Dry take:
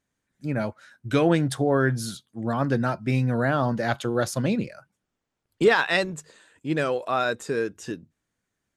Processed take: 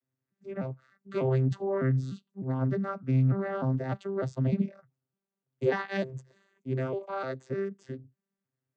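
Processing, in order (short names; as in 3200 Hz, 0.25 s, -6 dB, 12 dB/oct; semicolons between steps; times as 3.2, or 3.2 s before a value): arpeggiated vocoder bare fifth, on C3, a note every 0.301 s; 2.88–3.4 bell 1300 Hz +11 dB 0.29 oct; gain -4.5 dB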